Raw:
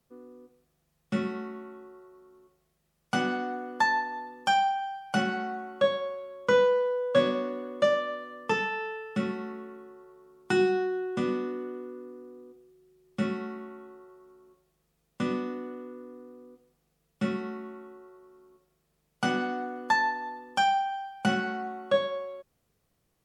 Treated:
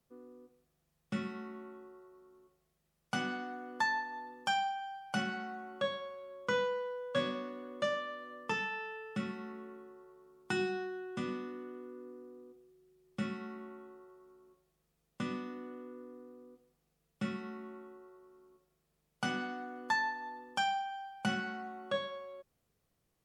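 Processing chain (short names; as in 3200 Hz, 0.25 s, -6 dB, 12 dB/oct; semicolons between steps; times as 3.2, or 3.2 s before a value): dynamic EQ 460 Hz, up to -7 dB, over -40 dBFS, Q 0.73; gain -5 dB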